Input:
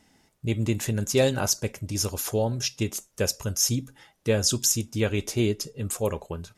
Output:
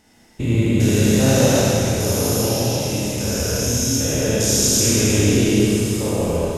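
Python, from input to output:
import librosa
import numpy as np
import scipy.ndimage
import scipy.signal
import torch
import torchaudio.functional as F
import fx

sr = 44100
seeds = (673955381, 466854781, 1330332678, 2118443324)

y = fx.spec_steps(x, sr, hold_ms=400)
y = fx.rev_schroeder(y, sr, rt60_s=2.6, comb_ms=26, drr_db=-6.0)
y = fx.echo_warbled(y, sr, ms=151, feedback_pct=73, rate_hz=2.8, cents=185, wet_db=-17.5)
y = y * librosa.db_to_amplitude(7.0)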